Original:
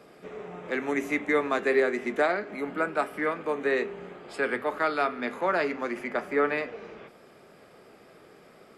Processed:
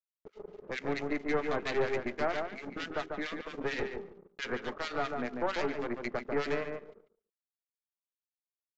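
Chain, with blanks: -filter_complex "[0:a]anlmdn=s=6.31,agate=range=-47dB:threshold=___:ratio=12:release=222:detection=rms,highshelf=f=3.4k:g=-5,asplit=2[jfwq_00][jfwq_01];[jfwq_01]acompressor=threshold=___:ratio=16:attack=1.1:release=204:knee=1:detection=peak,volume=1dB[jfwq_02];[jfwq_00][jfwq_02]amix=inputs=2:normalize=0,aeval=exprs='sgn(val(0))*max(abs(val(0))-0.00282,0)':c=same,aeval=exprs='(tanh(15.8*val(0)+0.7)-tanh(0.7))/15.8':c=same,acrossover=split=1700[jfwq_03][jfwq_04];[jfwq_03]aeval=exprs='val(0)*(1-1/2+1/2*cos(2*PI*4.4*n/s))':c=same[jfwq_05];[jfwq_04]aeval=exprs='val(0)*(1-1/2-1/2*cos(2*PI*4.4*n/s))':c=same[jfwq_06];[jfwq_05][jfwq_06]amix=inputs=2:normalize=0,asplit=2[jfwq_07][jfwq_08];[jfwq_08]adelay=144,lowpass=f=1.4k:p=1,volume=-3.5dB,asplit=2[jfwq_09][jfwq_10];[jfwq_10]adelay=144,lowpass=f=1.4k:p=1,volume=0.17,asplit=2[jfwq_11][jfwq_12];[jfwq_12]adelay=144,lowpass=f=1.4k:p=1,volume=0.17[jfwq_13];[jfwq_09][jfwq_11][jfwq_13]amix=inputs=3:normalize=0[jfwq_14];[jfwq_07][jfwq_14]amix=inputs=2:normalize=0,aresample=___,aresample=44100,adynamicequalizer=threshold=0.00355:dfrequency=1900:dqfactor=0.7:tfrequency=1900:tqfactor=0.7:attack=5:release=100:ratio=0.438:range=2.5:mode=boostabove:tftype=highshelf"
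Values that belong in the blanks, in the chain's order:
-48dB, -34dB, 16000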